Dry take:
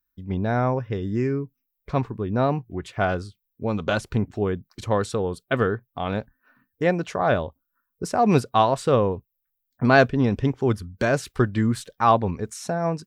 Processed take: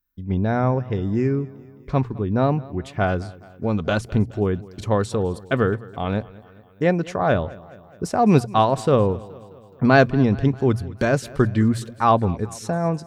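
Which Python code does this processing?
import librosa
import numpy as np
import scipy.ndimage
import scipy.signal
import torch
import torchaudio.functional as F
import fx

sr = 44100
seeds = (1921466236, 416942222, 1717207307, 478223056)

p1 = fx.low_shelf(x, sr, hz=320.0, db=5.5)
p2 = fx.hum_notches(p1, sr, base_hz=60, count=2)
y = p2 + fx.echo_feedback(p2, sr, ms=211, feedback_pct=58, wet_db=-21.0, dry=0)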